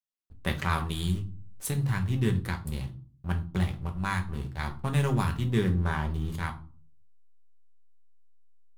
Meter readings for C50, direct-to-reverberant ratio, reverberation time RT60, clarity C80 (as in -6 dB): 14.0 dB, 4.0 dB, 0.40 s, 19.5 dB